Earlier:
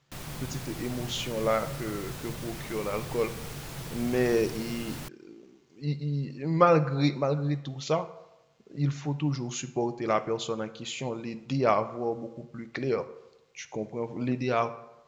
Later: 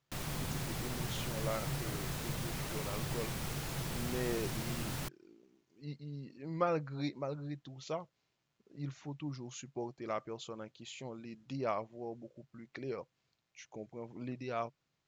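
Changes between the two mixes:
speech -9.5 dB; reverb: off

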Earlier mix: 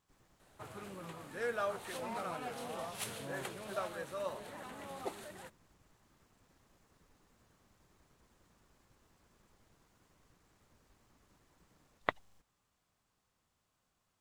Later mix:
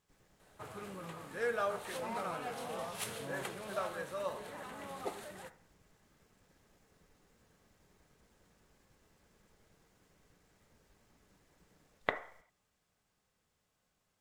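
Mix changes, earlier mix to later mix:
speech: add bell 1100 Hz -6 dB 0.65 oct; reverb: on, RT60 0.60 s

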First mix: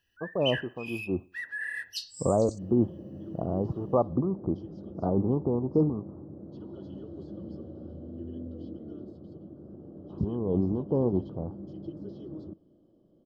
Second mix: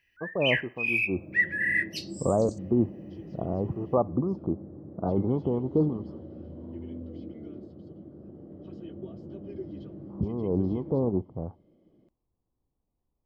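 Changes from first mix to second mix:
first sound: send -6.0 dB; second sound: entry -1.45 s; master: remove Butterworth band-stop 2200 Hz, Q 1.6

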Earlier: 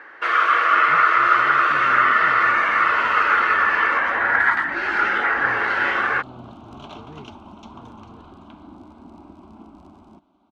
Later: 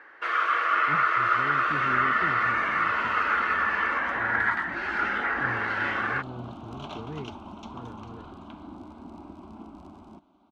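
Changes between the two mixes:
speech +4.5 dB; first sound -7.5 dB

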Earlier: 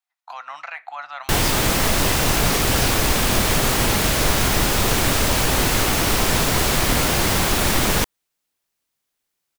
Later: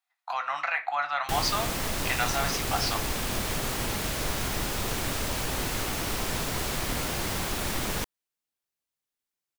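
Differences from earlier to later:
speech: send +11.5 dB; background -11.5 dB

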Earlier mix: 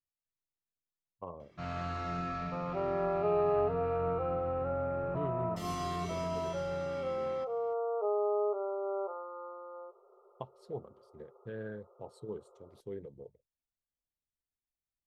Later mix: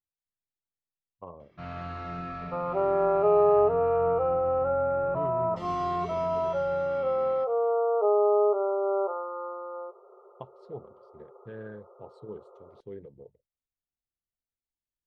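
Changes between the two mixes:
second sound +8.5 dB; master: add LPF 3800 Hz 12 dB/oct

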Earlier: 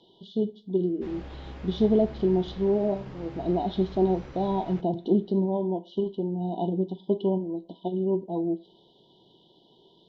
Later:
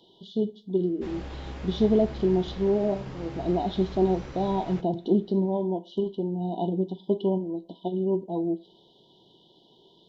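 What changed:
background +3.0 dB; master: remove air absorption 80 m

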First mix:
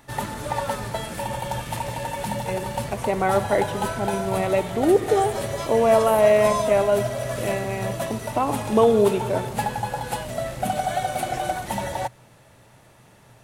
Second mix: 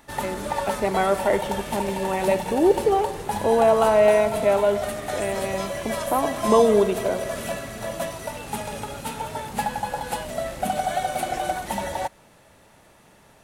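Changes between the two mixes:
speech: entry -2.25 s; master: add bell 120 Hz -14 dB 0.32 oct

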